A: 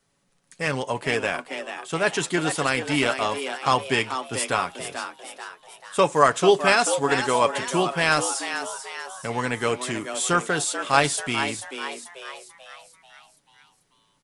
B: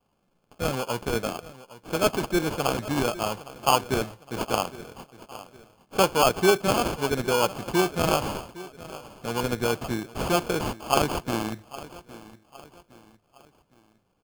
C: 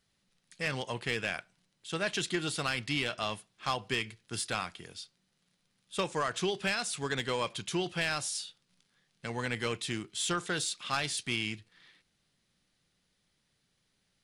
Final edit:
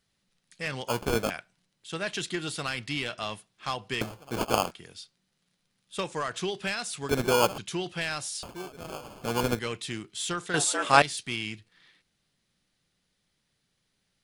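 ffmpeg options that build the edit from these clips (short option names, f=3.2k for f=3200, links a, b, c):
-filter_complex "[1:a]asplit=4[a][b][c][d];[2:a]asplit=6[e][f][g][h][i][j];[e]atrim=end=0.882[k];[a]atrim=start=0.878:end=1.302[l];[f]atrim=start=1.298:end=4.012[m];[b]atrim=start=4.008:end=4.712[n];[g]atrim=start=4.708:end=7.092[o];[c]atrim=start=7.088:end=7.582[p];[h]atrim=start=7.578:end=8.432[q];[d]atrim=start=8.428:end=9.592[r];[i]atrim=start=9.588:end=10.542[s];[0:a]atrim=start=10.538:end=11.022[t];[j]atrim=start=11.018[u];[k][l]acrossfade=d=0.004:c1=hsin:c2=hsin[v];[v][m]acrossfade=d=0.004:c1=hsin:c2=hsin[w];[w][n]acrossfade=d=0.004:c1=hsin:c2=hsin[x];[x][o]acrossfade=d=0.004:c1=hsin:c2=hsin[y];[y][p]acrossfade=d=0.004:c1=hsin:c2=hsin[z];[z][q]acrossfade=d=0.004:c1=hsin:c2=hsin[aa];[aa][r]acrossfade=d=0.004:c1=hsin:c2=hsin[ab];[ab][s]acrossfade=d=0.004:c1=hsin:c2=hsin[ac];[ac][t]acrossfade=d=0.004:c1=hsin:c2=hsin[ad];[ad][u]acrossfade=d=0.004:c1=hsin:c2=hsin"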